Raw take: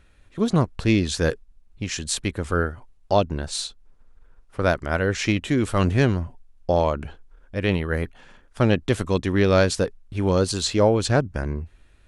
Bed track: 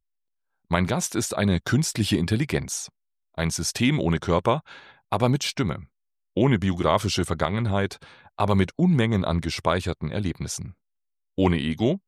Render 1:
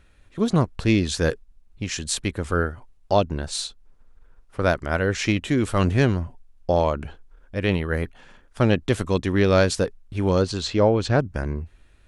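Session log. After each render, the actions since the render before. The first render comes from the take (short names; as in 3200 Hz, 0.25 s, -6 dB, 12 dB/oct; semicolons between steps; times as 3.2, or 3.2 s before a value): 10.42–11.19 air absorption 99 m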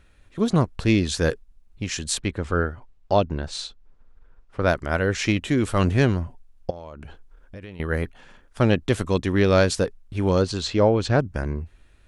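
2.18–4.68 air absorption 80 m; 6.7–7.8 compressor 8:1, threshold -35 dBFS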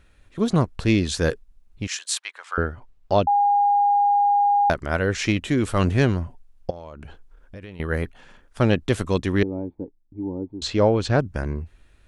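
1.87–2.58 HPF 900 Hz 24 dB/oct; 3.27–4.7 bleep 814 Hz -15 dBFS; 9.43–10.62 vocal tract filter u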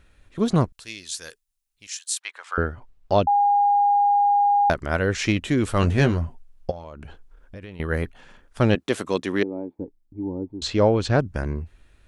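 0.72–2.21 pre-emphasis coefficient 0.97; 5.81–6.84 doubler 13 ms -7 dB; 8.75–9.79 HPF 240 Hz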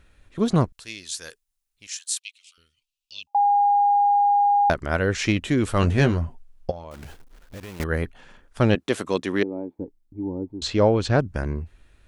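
2.19–3.35 elliptic high-pass 2600 Hz; 6.91–7.84 block floating point 3-bit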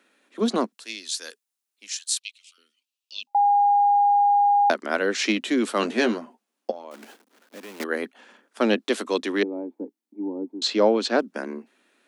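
steep high-pass 210 Hz 72 dB/oct; dynamic EQ 4200 Hz, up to +5 dB, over -45 dBFS, Q 1.6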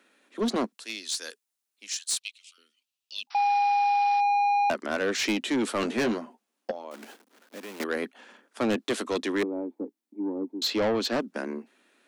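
soft clip -21 dBFS, distortion -11 dB; 3.3–4.21 painted sound noise 710–5800 Hz -48 dBFS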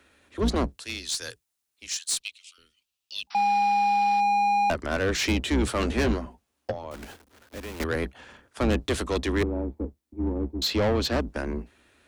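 octaver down 2 oct, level +1 dB; in parallel at -7.5 dB: soft clip -34.5 dBFS, distortion -6 dB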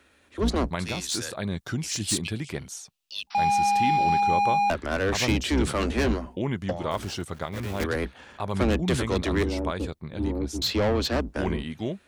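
add bed track -8.5 dB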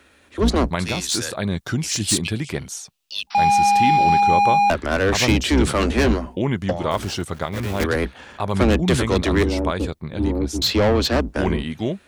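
gain +6.5 dB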